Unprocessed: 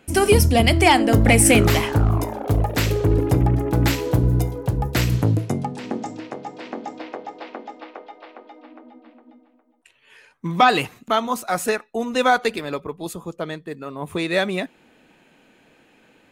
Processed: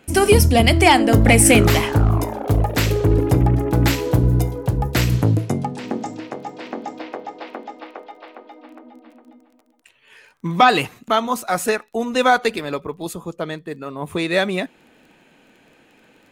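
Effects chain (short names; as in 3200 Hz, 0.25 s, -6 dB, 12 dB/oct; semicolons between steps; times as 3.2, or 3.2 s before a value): crackle 20/s -44 dBFS; gain +2 dB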